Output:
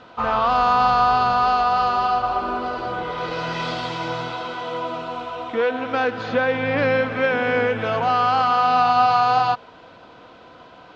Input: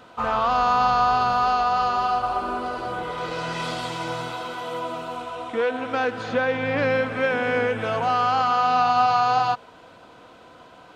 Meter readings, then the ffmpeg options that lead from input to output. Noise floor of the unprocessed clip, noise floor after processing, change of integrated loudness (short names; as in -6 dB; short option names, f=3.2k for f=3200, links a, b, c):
-48 dBFS, -46 dBFS, +2.5 dB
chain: -af "lowpass=f=5.6k:w=0.5412,lowpass=f=5.6k:w=1.3066,volume=2.5dB"